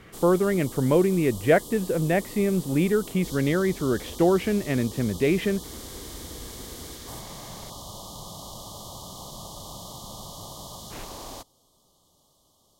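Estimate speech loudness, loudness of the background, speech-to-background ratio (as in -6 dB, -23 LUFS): -24.0 LUFS, -39.0 LUFS, 15.0 dB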